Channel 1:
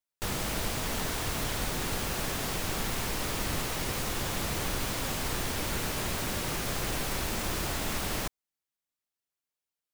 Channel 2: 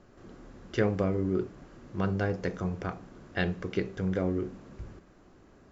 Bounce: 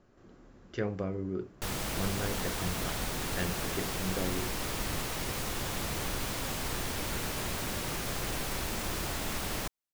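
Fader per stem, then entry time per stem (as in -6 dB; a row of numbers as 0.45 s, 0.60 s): -2.5 dB, -6.5 dB; 1.40 s, 0.00 s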